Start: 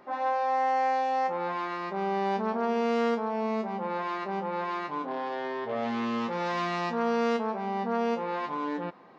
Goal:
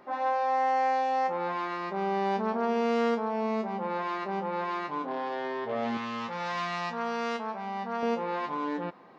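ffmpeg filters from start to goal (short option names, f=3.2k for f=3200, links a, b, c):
-filter_complex "[0:a]asettb=1/sr,asplit=3[a][b][c];[a]atrim=end=5.974[d];[b]atrim=start=5.97:end=8.03,asetpts=PTS-STARTPTS,afade=t=in:d=0.004:c=qsin,afade=t=out:st=2.056:d=0.004:c=qsin,equalizer=f=330:w=1.1:g=-12.5[e];[c]atrim=start=8.026[f];[d][e]acrossfade=d=0.004:c1=hsin:c2=qsin[g];[g][f]acrossfade=d=0.004:c1=qsin:c2=hsin"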